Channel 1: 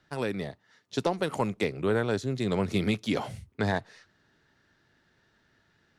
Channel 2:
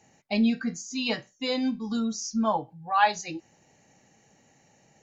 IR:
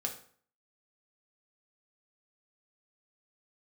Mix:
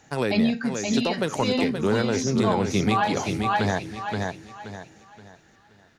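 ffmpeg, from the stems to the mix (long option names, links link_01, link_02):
-filter_complex "[0:a]acontrast=81,volume=-0.5dB,asplit=2[link_01][link_02];[link_02]volume=-7.5dB[link_03];[1:a]volume=2.5dB,asplit=3[link_04][link_05][link_06];[link_05]volume=-14dB[link_07];[link_06]volume=-4dB[link_08];[2:a]atrim=start_sample=2205[link_09];[link_07][link_09]afir=irnorm=-1:irlink=0[link_10];[link_03][link_08]amix=inputs=2:normalize=0,aecho=0:1:525|1050|1575|2100|2625:1|0.32|0.102|0.0328|0.0105[link_11];[link_01][link_04][link_10][link_11]amix=inputs=4:normalize=0,alimiter=limit=-12.5dB:level=0:latency=1:release=302"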